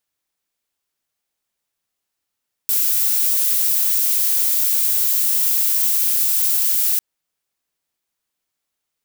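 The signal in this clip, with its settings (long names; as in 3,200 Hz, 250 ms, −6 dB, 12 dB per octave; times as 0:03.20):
noise violet, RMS −17.5 dBFS 4.30 s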